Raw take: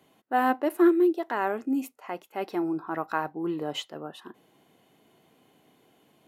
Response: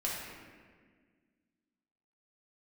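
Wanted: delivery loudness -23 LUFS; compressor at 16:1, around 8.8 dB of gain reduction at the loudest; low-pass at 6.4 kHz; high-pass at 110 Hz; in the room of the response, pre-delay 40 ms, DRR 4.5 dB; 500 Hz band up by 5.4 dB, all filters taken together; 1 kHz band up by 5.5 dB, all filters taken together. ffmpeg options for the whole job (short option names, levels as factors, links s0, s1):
-filter_complex "[0:a]highpass=110,lowpass=6400,equalizer=f=500:t=o:g=8,equalizer=f=1000:t=o:g=4,acompressor=threshold=0.1:ratio=16,asplit=2[s0][s1];[1:a]atrim=start_sample=2205,adelay=40[s2];[s1][s2]afir=irnorm=-1:irlink=0,volume=0.335[s3];[s0][s3]amix=inputs=2:normalize=0,volume=1.5"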